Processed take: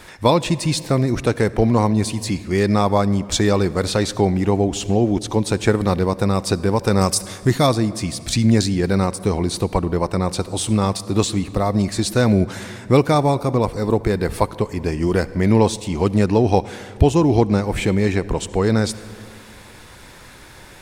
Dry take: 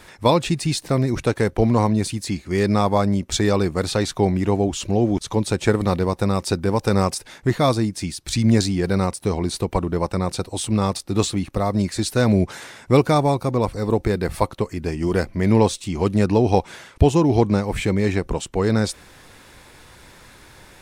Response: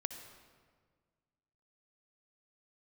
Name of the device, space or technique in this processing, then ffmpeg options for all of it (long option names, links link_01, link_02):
ducked reverb: -filter_complex "[0:a]asplit=3[link_01][link_02][link_03];[1:a]atrim=start_sample=2205[link_04];[link_02][link_04]afir=irnorm=-1:irlink=0[link_05];[link_03]apad=whole_len=918013[link_06];[link_05][link_06]sidechaincompress=threshold=-22dB:ratio=3:attack=24:release=737,volume=-1.5dB[link_07];[link_01][link_07]amix=inputs=2:normalize=0,asettb=1/sr,asplit=3[link_08][link_09][link_10];[link_08]atrim=end=7.014[link_11];[link_09]atrim=start=7.01:end=7.67,asetpts=PTS-STARTPTS,afade=type=in:duration=0.004:curve=qsin,afade=type=out:start_time=0.656:duration=0.004:curve=qsin,bass=frequency=250:gain=2,treble=frequency=4000:gain=8[link_12];[link_10]atrim=start=7.666[link_13];[link_11][link_12]acrossfade=duration=0.004:curve1=hsin:curve2=qsin[link_14];[link_14][link_13]acrossfade=duration=0.004:curve1=qsin:curve2=hsin,volume=-1dB"